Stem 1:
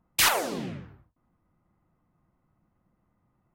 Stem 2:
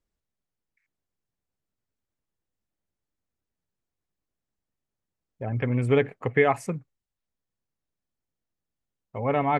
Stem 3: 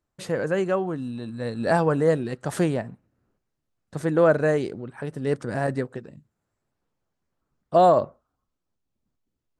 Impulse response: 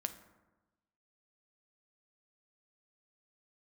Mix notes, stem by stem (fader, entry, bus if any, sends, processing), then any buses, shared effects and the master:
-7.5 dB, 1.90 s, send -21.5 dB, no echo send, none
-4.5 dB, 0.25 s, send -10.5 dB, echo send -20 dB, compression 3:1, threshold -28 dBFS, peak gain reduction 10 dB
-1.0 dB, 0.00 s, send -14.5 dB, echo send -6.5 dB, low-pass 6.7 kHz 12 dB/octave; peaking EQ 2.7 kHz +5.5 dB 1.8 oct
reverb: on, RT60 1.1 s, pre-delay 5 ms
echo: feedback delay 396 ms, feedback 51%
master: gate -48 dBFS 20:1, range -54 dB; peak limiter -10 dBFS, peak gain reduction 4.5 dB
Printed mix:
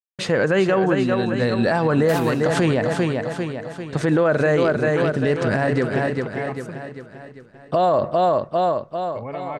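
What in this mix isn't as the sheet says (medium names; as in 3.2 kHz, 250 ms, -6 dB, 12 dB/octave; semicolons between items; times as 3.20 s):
stem 2: entry 0.25 s -> 0.00 s; stem 3 -1.0 dB -> +8.0 dB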